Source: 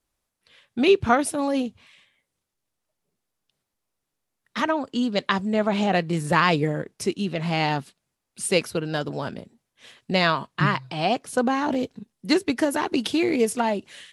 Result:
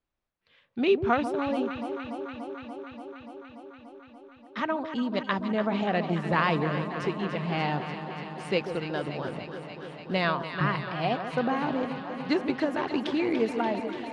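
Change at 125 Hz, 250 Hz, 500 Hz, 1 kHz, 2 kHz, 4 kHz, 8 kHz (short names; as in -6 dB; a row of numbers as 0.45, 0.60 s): -4.0 dB, -4.5 dB, -4.0 dB, -4.5 dB, -5.0 dB, -8.0 dB, under -20 dB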